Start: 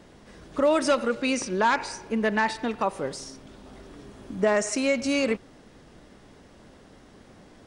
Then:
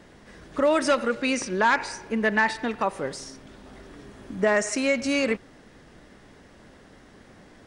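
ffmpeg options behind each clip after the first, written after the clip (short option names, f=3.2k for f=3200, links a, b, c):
-af "equalizer=f=1.8k:t=o:w=0.67:g=5"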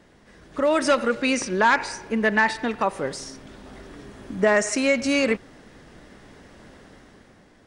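-af "dynaudnorm=f=120:g=11:m=7.5dB,volume=-4dB"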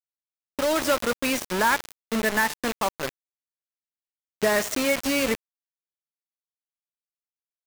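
-af "acrusher=bits=3:mix=0:aa=0.000001,volume=-3.5dB"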